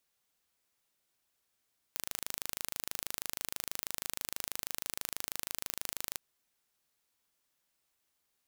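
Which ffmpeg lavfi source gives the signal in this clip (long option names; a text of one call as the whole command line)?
ffmpeg -f lavfi -i "aevalsrc='0.376*eq(mod(n,1683),0)':duration=4.22:sample_rate=44100" out.wav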